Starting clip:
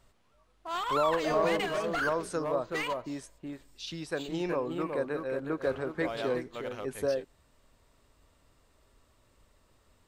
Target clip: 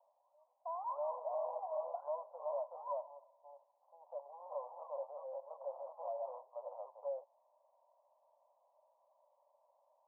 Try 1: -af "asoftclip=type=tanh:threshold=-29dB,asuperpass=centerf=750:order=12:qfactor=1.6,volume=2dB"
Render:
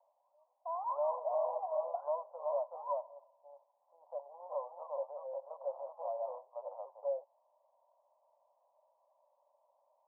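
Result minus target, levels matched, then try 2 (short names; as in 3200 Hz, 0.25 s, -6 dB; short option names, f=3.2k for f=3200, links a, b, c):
soft clip: distortion -4 dB
-af "asoftclip=type=tanh:threshold=-35.5dB,asuperpass=centerf=750:order=12:qfactor=1.6,volume=2dB"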